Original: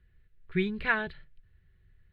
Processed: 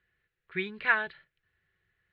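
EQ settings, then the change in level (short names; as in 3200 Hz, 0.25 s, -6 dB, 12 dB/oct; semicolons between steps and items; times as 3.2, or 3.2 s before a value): band-pass 1600 Hz, Q 0.54; +2.5 dB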